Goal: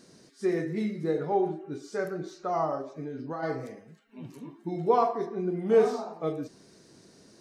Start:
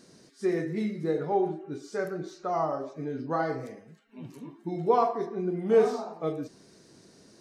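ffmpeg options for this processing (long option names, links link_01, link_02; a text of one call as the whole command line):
ffmpeg -i in.wav -filter_complex "[0:a]asplit=3[link_01][link_02][link_03];[link_01]afade=type=out:start_time=2.81:duration=0.02[link_04];[link_02]acompressor=threshold=-33dB:ratio=6,afade=type=in:start_time=2.81:duration=0.02,afade=type=out:start_time=3.42:duration=0.02[link_05];[link_03]afade=type=in:start_time=3.42:duration=0.02[link_06];[link_04][link_05][link_06]amix=inputs=3:normalize=0" out.wav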